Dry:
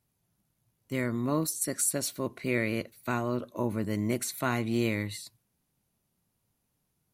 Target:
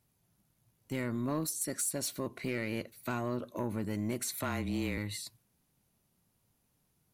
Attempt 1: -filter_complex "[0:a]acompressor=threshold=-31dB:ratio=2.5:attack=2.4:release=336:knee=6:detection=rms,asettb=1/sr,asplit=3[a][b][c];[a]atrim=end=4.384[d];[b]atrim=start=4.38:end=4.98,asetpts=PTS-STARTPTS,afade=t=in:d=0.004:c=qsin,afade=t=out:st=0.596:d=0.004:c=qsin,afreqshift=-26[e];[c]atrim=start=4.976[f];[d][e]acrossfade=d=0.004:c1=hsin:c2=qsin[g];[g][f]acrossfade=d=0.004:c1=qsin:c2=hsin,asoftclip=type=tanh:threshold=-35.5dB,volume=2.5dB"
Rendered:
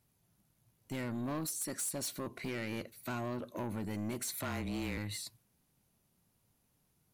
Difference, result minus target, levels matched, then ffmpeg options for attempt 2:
soft clip: distortion +9 dB
-filter_complex "[0:a]acompressor=threshold=-31dB:ratio=2.5:attack=2.4:release=336:knee=6:detection=rms,asettb=1/sr,asplit=3[a][b][c];[a]atrim=end=4.384[d];[b]atrim=start=4.38:end=4.98,asetpts=PTS-STARTPTS,afade=t=in:d=0.004:c=qsin,afade=t=out:st=0.596:d=0.004:c=qsin,afreqshift=-26[e];[c]atrim=start=4.976[f];[d][e]acrossfade=d=0.004:c1=hsin:c2=qsin[g];[g][f]acrossfade=d=0.004:c1=qsin:c2=hsin,asoftclip=type=tanh:threshold=-27.5dB,volume=2.5dB"

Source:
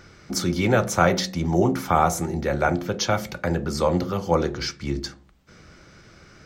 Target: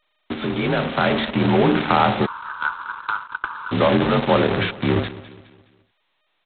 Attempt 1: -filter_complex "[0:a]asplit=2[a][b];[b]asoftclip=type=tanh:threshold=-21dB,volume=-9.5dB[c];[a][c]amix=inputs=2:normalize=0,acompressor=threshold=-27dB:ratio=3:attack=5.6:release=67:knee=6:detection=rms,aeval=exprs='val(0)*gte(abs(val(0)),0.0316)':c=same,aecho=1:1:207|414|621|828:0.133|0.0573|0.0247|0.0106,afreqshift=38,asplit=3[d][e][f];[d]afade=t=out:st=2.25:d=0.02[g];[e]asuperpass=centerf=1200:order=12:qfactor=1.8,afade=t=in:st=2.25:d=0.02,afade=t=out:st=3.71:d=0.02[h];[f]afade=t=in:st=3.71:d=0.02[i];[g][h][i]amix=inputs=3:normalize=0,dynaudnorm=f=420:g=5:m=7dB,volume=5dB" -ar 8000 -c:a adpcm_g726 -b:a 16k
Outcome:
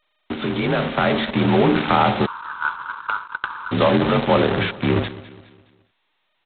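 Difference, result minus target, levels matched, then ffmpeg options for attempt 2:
soft clip: distortion -5 dB
-filter_complex "[0:a]asplit=2[a][b];[b]asoftclip=type=tanh:threshold=-30.5dB,volume=-9.5dB[c];[a][c]amix=inputs=2:normalize=0,acompressor=threshold=-27dB:ratio=3:attack=5.6:release=67:knee=6:detection=rms,aeval=exprs='val(0)*gte(abs(val(0)),0.0316)':c=same,aecho=1:1:207|414|621|828:0.133|0.0573|0.0247|0.0106,afreqshift=38,asplit=3[d][e][f];[d]afade=t=out:st=2.25:d=0.02[g];[e]asuperpass=centerf=1200:order=12:qfactor=1.8,afade=t=in:st=2.25:d=0.02,afade=t=out:st=3.71:d=0.02[h];[f]afade=t=in:st=3.71:d=0.02[i];[g][h][i]amix=inputs=3:normalize=0,dynaudnorm=f=420:g=5:m=7dB,volume=5dB" -ar 8000 -c:a adpcm_g726 -b:a 16k

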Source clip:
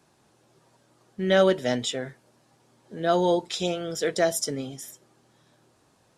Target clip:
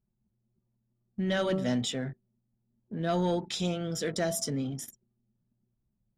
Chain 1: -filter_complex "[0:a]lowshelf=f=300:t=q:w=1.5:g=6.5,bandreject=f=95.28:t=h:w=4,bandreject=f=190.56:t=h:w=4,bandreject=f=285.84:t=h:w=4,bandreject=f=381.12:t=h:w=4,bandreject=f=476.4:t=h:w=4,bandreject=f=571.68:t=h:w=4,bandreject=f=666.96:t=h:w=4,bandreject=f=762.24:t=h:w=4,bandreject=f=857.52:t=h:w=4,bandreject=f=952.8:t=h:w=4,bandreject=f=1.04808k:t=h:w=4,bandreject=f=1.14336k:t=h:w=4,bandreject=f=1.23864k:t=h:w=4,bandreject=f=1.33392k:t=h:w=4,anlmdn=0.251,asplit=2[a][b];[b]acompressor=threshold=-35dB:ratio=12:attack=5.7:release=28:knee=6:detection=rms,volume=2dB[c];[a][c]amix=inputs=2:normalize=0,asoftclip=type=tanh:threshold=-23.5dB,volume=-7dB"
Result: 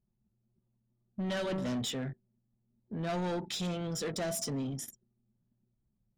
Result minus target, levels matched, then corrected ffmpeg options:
soft clip: distortion +13 dB
-filter_complex "[0:a]lowshelf=f=300:t=q:w=1.5:g=6.5,bandreject=f=95.28:t=h:w=4,bandreject=f=190.56:t=h:w=4,bandreject=f=285.84:t=h:w=4,bandreject=f=381.12:t=h:w=4,bandreject=f=476.4:t=h:w=4,bandreject=f=571.68:t=h:w=4,bandreject=f=666.96:t=h:w=4,bandreject=f=762.24:t=h:w=4,bandreject=f=857.52:t=h:w=4,bandreject=f=952.8:t=h:w=4,bandreject=f=1.04808k:t=h:w=4,bandreject=f=1.14336k:t=h:w=4,bandreject=f=1.23864k:t=h:w=4,bandreject=f=1.33392k:t=h:w=4,anlmdn=0.251,asplit=2[a][b];[b]acompressor=threshold=-35dB:ratio=12:attack=5.7:release=28:knee=6:detection=rms,volume=2dB[c];[a][c]amix=inputs=2:normalize=0,asoftclip=type=tanh:threshold=-12dB,volume=-7dB"

